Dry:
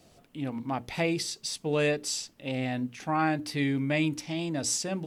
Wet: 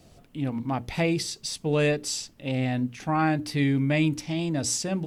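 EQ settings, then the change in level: low shelf 150 Hz +10 dB; +1.5 dB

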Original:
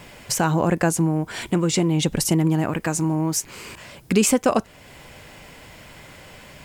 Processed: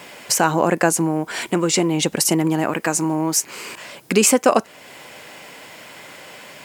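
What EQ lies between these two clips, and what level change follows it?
Bessel high-pass 320 Hz, order 2; dynamic EQ 3500 Hz, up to -4 dB, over -48 dBFS, Q 5; +5.5 dB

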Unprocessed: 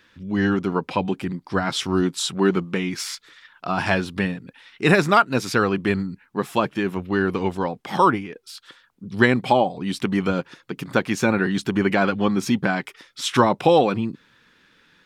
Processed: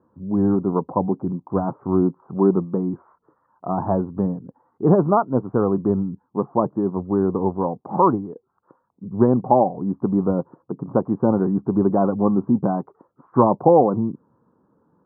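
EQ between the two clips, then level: HPF 86 Hz; steep low-pass 1100 Hz 48 dB/oct; air absorption 330 m; +3.0 dB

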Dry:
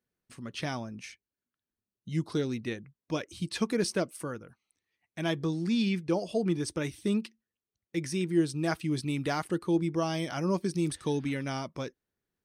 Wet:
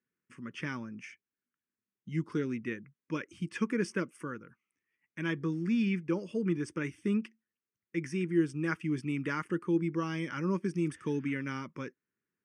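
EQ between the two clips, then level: BPF 170–5000 Hz; fixed phaser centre 1700 Hz, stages 4; +1.5 dB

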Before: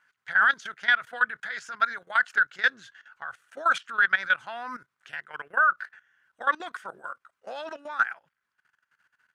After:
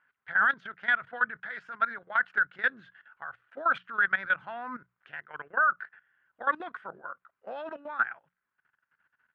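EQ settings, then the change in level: notches 60/120/180 Hz; dynamic EQ 140 Hz, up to +6 dB, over -51 dBFS, Q 0.77; air absorption 490 m; 0.0 dB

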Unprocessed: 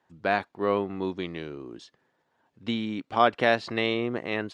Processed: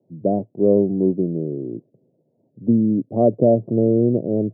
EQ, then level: Chebyshev band-pass 110–620 Hz, order 4; low shelf 330 Hz +11.5 dB; +6.5 dB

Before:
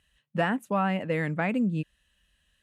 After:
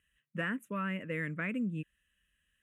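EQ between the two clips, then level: low shelf 200 Hz -6.5 dB; fixed phaser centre 1900 Hz, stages 4; -4.0 dB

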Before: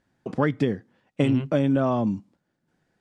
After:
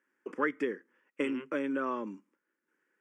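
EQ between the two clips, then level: HPF 350 Hz 24 dB/oct; high shelf 5000 Hz -6.5 dB; fixed phaser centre 1700 Hz, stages 4; 0.0 dB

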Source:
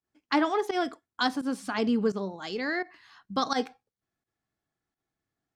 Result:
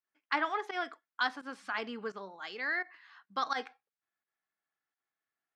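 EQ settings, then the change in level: band-pass 1700 Hz, Q 1.1; 0.0 dB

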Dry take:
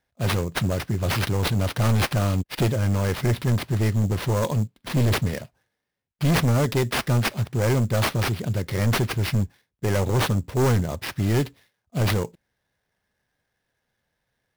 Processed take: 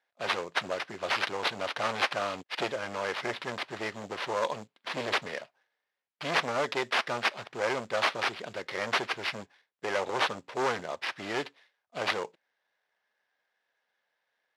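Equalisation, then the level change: BPF 620–4100 Hz; 0.0 dB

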